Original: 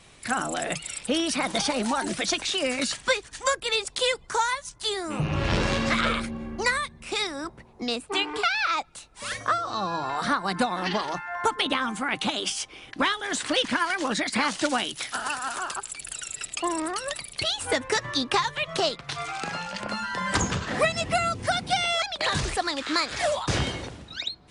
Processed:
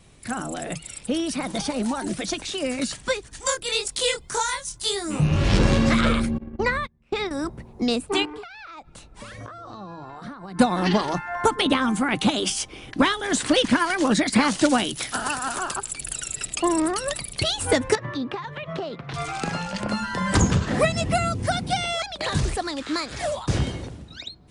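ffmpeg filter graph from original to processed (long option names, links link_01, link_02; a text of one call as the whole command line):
ffmpeg -i in.wav -filter_complex "[0:a]asettb=1/sr,asplit=3[link_01][link_02][link_03];[link_01]atrim=end=3.404[link_04];[link_02]atrim=start=3.4:end=5.59,asetpts=PTS-STARTPTS,afade=type=in:duration=0.004:curve=qsin,afade=type=out:start_time=2.186:duration=0.004:curve=qsin,highshelf=frequency=2300:gain=9,flanger=delay=20:depth=7.2:speed=1.9[link_05];[link_03]atrim=start=5.586[link_06];[link_04][link_05]acrossfade=duration=0.004:curve1=hsin:curve2=qsin[link_07];[link_07][link_06]acrossfade=duration=0.004:curve1=qsin:curve2=hsin,asettb=1/sr,asplit=3[link_08][link_09][link_10];[link_08]atrim=end=6.384[link_11];[link_09]atrim=start=6.38:end=7.31,asetpts=PTS-STARTPTS,afade=type=in:duration=0.004:curve=qsin,afade=type=out:start_time=0.926:duration=0.004:curve=qsin,lowpass=2900,agate=range=-25dB:threshold=-34dB:ratio=16:release=100:detection=peak[link_12];[link_10]atrim=start=7.306[link_13];[link_11][link_12]acrossfade=duration=0.004:curve1=hsin:curve2=qsin[link_14];[link_14][link_13]acrossfade=duration=0.004:curve1=qsin:curve2=hsin,asettb=1/sr,asplit=3[link_15][link_16][link_17];[link_15]atrim=end=8.254[link_18];[link_16]atrim=start=8.25:end=10.59,asetpts=PTS-STARTPTS,afade=type=in:duration=0.004:curve=qsin,afade=type=out:start_time=2.336:duration=0.004:curve=qsin,lowpass=frequency=2600:poles=1,acompressor=threshold=-40dB:ratio=8:attack=3.2:release=140:knee=1:detection=peak[link_19];[link_17]atrim=start=10.586[link_20];[link_18][link_19]acrossfade=duration=0.004:curve1=hsin:curve2=qsin[link_21];[link_21][link_20]acrossfade=duration=0.004:curve1=qsin:curve2=hsin,asettb=1/sr,asplit=3[link_22][link_23][link_24];[link_22]atrim=end=17.954[link_25];[link_23]atrim=start=17.95:end=19.14,asetpts=PTS-STARTPTS,afade=type=in:duration=0.004:curve=qsin,afade=type=out:start_time=1.186:duration=0.004:curve=qsin,highpass=120,lowpass=2500,acompressor=threshold=-32dB:ratio=6:attack=3.2:release=140:knee=1:detection=peak[link_26];[link_24]atrim=start=19.136[link_27];[link_25][link_26]acrossfade=duration=0.004:curve1=hsin:curve2=qsin[link_28];[link_28][link_27]acrossfade=duration=0.004:curve1=qsin:curve2=hsin,highshelf=frequency=8100:gain=9,dynaudnorm=framelen=880:gausssize=9:maxgain=11.5dB,lowshelf=frequency=490:gain=12,volume=-7dB" out.wav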